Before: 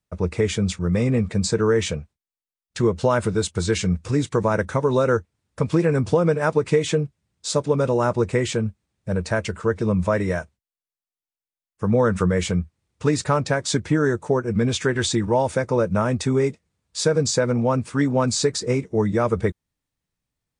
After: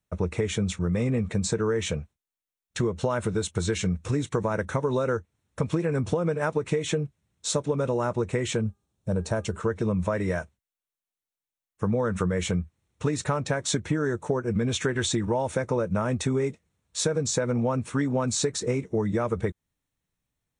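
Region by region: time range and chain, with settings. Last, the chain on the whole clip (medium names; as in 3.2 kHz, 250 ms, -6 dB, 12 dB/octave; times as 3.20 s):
8.61–9.58 s: peaking EQ 2 kHz -10.5 dB 0.96 oct + de-hum 403.6 Hz, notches 4
whole clip: band-stop 4.8 kHz, Q 5.4; compression, threshold -22 dBFS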